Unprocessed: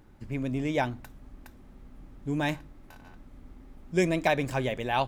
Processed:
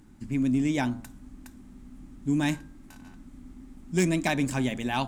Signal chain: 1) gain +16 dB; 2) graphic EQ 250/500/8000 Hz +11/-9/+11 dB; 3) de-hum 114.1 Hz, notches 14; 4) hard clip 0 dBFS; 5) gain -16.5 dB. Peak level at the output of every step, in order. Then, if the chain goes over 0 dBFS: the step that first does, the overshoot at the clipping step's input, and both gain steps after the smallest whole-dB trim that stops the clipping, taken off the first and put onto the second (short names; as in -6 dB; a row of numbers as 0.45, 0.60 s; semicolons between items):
+5.0, +5.0, +5.0, 0.0, -16.5 dBFS; step 1, 5.0 dB; step 1 +11 dB, step 5 -11.5 dB